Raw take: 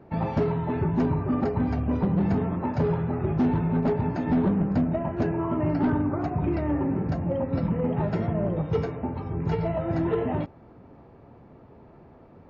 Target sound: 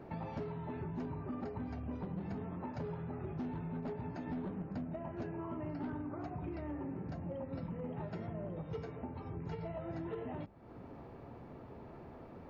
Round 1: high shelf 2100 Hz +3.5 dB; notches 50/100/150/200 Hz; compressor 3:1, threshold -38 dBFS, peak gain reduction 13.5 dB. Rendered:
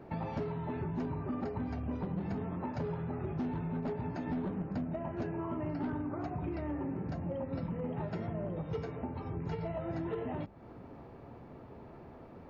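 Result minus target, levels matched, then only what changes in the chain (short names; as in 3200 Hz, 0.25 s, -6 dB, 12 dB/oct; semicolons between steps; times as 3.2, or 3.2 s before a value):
compressor: peak gain reduction -4.5 dB
change: compressor 3:1, threshold -45 dBFS, peak gain reduction 18 dB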